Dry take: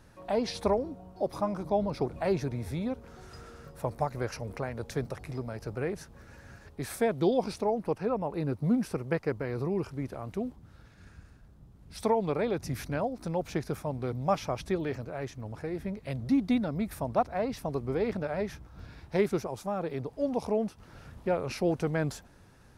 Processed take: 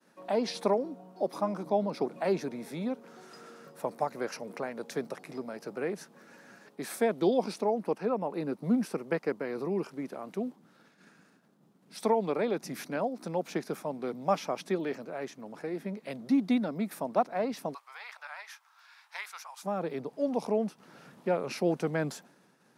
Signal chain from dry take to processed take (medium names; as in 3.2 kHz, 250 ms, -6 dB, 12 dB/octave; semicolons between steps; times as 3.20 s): expander -52 dBFS; steep high-pass 180 Hz 36 dB/octave, from 17.73 s 920 Hz, from 19.62 s 160 Hz